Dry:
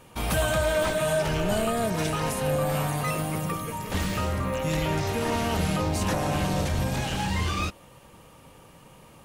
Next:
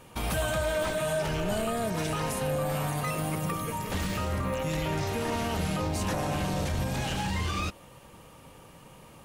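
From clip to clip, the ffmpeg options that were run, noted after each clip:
-af "alimiter=limit=0.0841:level=0:latency=1:release=67"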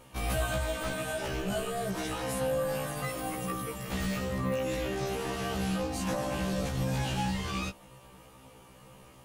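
-af "afftfilt=real='re*1.73*eq(mod(b,3),0)':imag='im*1.73*eq(mod(b,3),0)':win_size=2048:overlap=0.75"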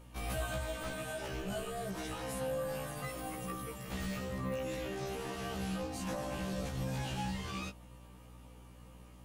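-af "aeval=exprs='val(0)+0.00447*(sin(2*PI*60*n/s)+sin(2*PI*2*60*n/s)/2+sin(2*PI*3*60*n/s)/3+sin(2*PI*4*60*n/s)/4+sin(2*PI*5*60*n/s)/5)':c=same,volume=0.473"

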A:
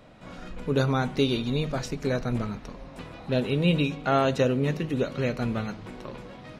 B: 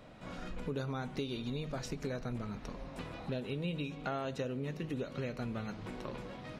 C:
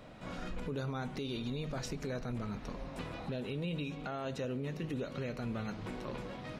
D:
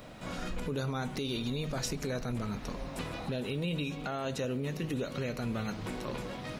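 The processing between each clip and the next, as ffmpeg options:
-af "acompressor=threshold=0.0224:ratio=5,volume=0.75"
-af "alimiter=level_in=2.51:limit=0.0631:level=0:latency=1:release=12,volume=0.398,volume=1.26"
-af "crystalizer=i=1.5:c=0,volume=1.5"

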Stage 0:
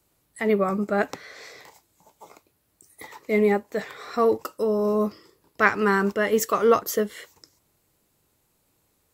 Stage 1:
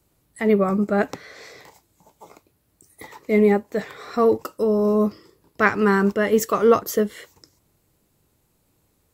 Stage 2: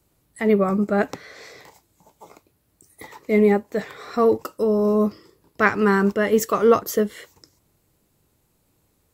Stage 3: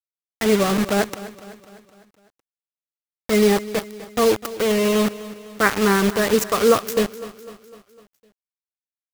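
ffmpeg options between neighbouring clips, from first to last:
-af "lowshelf=f=390:g=7"
-af anull
-af "acrusher=bits=3:mix=0:aa=0.000001,aecho=1:1:252|504|756|1008|1260:0.15|0.0793|0.042|0.0223|0.0118"

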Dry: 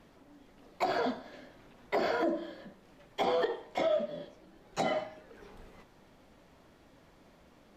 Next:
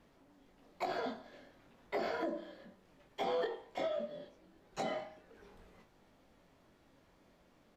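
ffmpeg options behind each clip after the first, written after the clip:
-filter_complex "[0:a]asplit=2[s0][s1];[s1]adelay=22,volume=0.473[s2];[s0][s2]amix=inputs=2:normalize=0,volume=0.422"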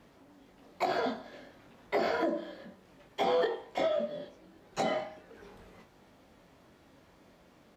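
-af "highpass=46,volume=2.24"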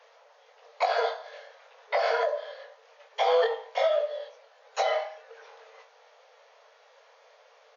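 -af "afftfilt=real='re*between(b*sr/4096,420,6800)':imag='im*between(b*sr/4096,420,6800)':win_size=4096:overlap=0.75,volume=1.88"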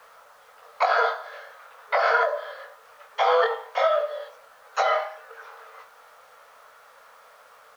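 -af "equalizer=f=1300:w=1.9:g=14.5,acrusher=bits=9:mix=0:aa=0.000001"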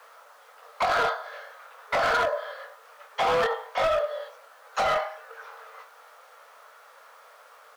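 -af "highpass=310,volume=10,asoftclip=hard,volume=0.1"

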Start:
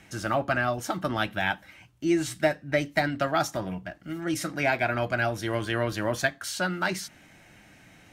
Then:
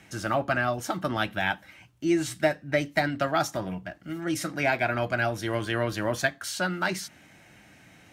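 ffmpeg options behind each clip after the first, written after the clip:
-af "highpass=57"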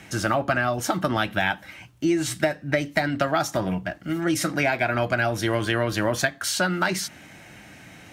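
-af "acompressor=threshold=0.0447:ratio=5,volume=2.51"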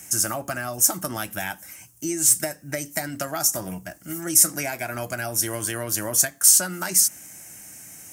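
-af "aexciter=amount=11.8:drive=7.6:freq=5800,volume=0.447"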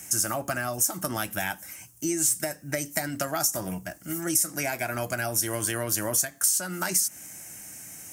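-af "acompressor=threshold=0.0891:ratio=6"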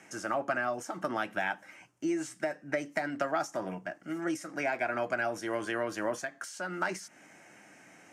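-af "highpass=270,lowpass=2300"

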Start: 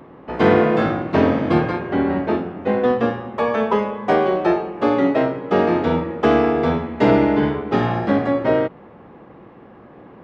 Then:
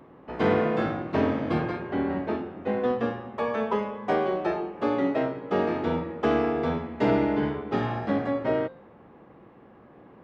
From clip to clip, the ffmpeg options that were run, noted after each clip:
-af "bandreject=f=174.9:t=h:w=4,bandreject=f=349.8:t=h:w=4,bandreject=f=524.7:t=h:w=4,bandreject=f=699.6:t=h:w=4,bandreject=f=874.5:t=h:w=4,bandreject=f=1049.4:t=h:w=4,bandreject=f=1224.3:t=h:w=4,bandreject=f=1399.2:t=h:w=4,bandreject=f=1574.1:t=h:w=4,bandreject=f=1749:t=h:w=4,bandreject=f=1923.9:t=h:w=4,bandreject=f=2098.8:t=h:w=4,bandreject=f=2273.7:t=h:w=4,bandreject=f=2448.6:t=h:w=4,bandreject=f=2623.5:t=h:w=4,bandreject=f=2798.4:t=h:w=4,bandreject=f=2973.3:t=h:w=4,bandreject=f=3148.2:t=h:w=4,bandreject=f=3323.1:t=h:w=4,bandreject=f=3498:t=h:w=4,bandreject=f=3672.9:t=h:w=4,bandreject=f=3847.8:t=h:w=4,bandreject=f=4022.7:t=h:w=4,bandreject=f=4197.6:t=h:w=4,bandreject=f=4372.5:t=h:w=4,bandreject=f=4547.4:t=h:w=4,bandreject=f=4722.3:t=h:w=4,bandreject=f=4897.2:t=h:w=4,bandreject=f=5072.1:t=h:w=4,bandreject=f=5247:t=h:w=4,bandreject=f=5421.9:t=h:w=4,bandreject=f=5596.8:t=h:w=4,bandreject=f=5771.7:t=h:w=4,bandreject=f=5946.6:t=h:w=4,bandreject=f=6121.5:t=h:w=4,bandreject=f=6296.4:t=h:w=4,bandreject=f=6471.3:t=h:w=4,bandreject=f=6646.2:t=h:w=4,volume=0.398"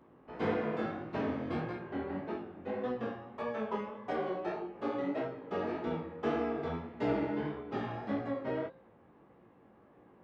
-af "flanger=delay=16.5:depth=6.8:speed=1.7,volume=0.473"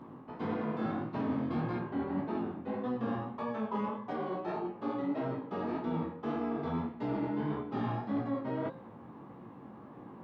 -af "areverse,acompressor=threshold=0.00708:ratio=6,areverse,equalizer=f=125:t=o:w=1:g=10,equalizer=f=250:t=o:w=1:g=10,equalizer=f=1000:t=o:w=1:g=10,equalizer=f=4000:t=o:w=1:g=6,volume=1.33"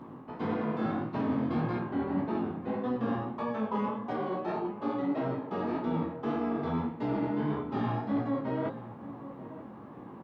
-filter_complex "[0:a]asplit=2[s0][s1];[s1]adelay=932.9,volume=0.2,highshelf=f=4000:g=-21[s2];[s0][s2]amix=inputs=2:normalize=0,volume=1.41"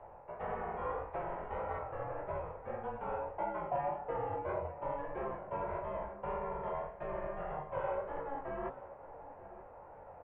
-af "highpass=f=360:t=q:w=0.5412,highpass=f=360:t=q:w=1.307,lowpass=f=2900:t=q:w=0.5176,lowpass=f=2900:t=q:w=0.7071,lowpass=f=2900:t=q:w=1.932,afreqshift=-270,equalizer=f=250:t=o:w=1:g=-11,equalizer=f=500:t=o:w=1:g=9,equalizer=f=1000:t=o:w=1:g=8,equalizer=f=2000:t=o:w=1:g=4,volume=0.422"

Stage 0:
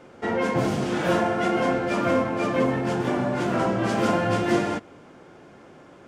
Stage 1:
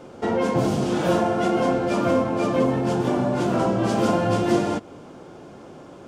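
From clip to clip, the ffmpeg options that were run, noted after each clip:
-filter_complex "[0:a]equalizer=f=1900:t=o:w=1:g=-8.5,asplit=2[s0][s1];[s1]acompressor=threshold=0.0282:ratio=6,volume=1.12[s2];[s0][s2]amix=inputs=2:normalize=0"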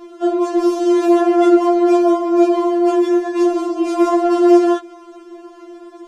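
-af "equalizer=f=140:t=o:w=2:g=7.5,alimiter=level_in=2.99:limit=0.891:release=50:level=0:latency=1,afftfilt=real='re*4*eq(mod(b,16),0)':imag='im*4*eq(mod(b,16),0)':win_size=2048:overlap=0.75,volume=0.531"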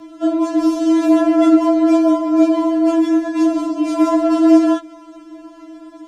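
-af "afreqshift=-30"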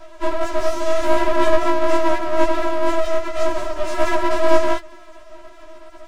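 -af "aeval=exprs='abs(val(0))':c=same"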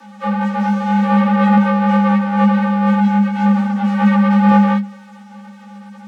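-filter_complex "[0:a]acrossover=split=3400[s0][s1];[s1]acompressor=threshold=0.002:ratio=4:attack=1:release=60[s2];[s0][s2]amix=inputs=2:normalize=0,afreqshift=200,asubboost=boost=9.5:cutoff=120"

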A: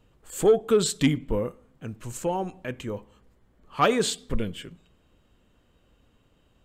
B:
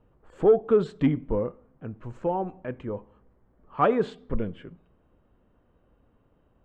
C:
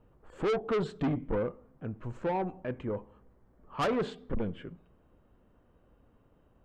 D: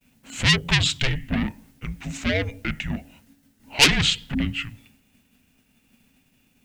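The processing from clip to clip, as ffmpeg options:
-af "lowpass=1200,lowshelf=f=370:g=-3.5,volume=1.26"
-af "asoftclip=type=tanh:threshold=0.0531"
-af "aexciter=amount=11.8:drive=4.8:freq=2100,agate=range=0.0224:threshold=0.00178:ratio=3:detection=peak,afreqshift=-280,volume=2"

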